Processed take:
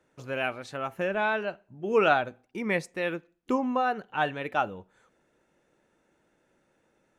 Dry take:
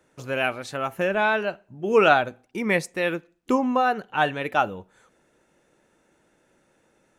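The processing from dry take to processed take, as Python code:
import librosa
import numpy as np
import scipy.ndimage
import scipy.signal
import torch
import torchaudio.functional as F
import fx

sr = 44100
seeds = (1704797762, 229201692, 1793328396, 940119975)

y = fx.high_shelf(x, sr, hz=7100.0, db=-8.0)
y = y * 10.0 ** (-5.0 / 20.0)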